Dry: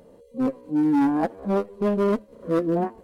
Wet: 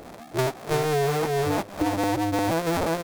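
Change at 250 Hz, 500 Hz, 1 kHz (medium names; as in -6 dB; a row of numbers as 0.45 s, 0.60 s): -5.5 dB, +0.5 dB, +3.5 dB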